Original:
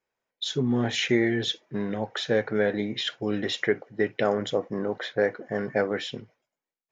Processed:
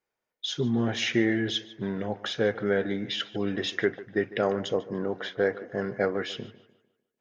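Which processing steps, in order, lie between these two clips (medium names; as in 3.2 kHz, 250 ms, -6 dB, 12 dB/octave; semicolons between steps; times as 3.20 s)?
tape echo 142 ms, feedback 42%, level -16 dB, low-pass 3.5 kHz; speed mistake 25 fps video run at 24 fps; trim -1.5 dB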